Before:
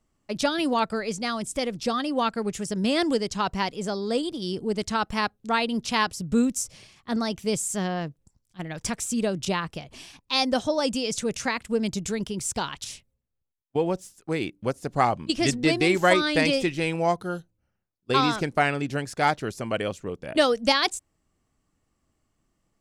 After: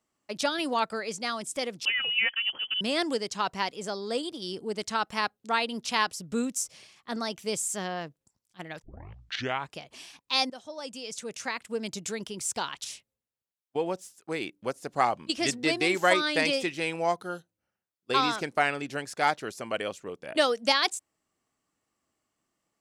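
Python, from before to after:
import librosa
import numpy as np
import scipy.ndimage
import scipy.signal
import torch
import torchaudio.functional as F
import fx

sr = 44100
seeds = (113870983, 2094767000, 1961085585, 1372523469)

y = fx.freq_invert(x, sr, carrier_hz=3200, at=(1.85, 2.81))
y = fx.edit(y, sr, fx.tape_start(start_s=8.82, length_s=0.96),
    fx.fade_in_from(start_s=10.5, length_s=1.57, floor_db=-17.5), tone=tone)
y = fx.highpass(y, sr, hz=470.0, slope=6)
y = F.gain(torch.from_numpy(y), -1.5).numpy()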